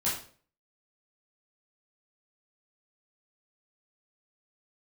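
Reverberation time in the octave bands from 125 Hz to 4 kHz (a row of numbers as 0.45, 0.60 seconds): 0.55, 0.50, 0.50, 0.40, 0.40, 0.40 seconds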